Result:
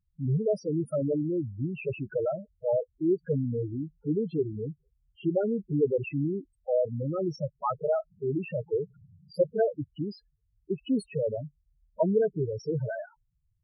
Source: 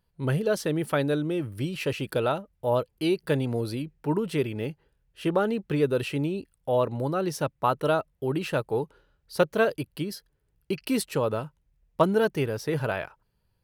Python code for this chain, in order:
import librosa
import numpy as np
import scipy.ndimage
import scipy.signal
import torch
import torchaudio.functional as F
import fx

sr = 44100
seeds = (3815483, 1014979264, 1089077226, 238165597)

y = fx.dmg_noise_band(x, sr, seeds[0], low_hz=81.0, high_hz=200.0, level_db=-56.0, at=(8.1, 9.78), fade=0.02)
y = fx.spec_topn(y, sr, count=4)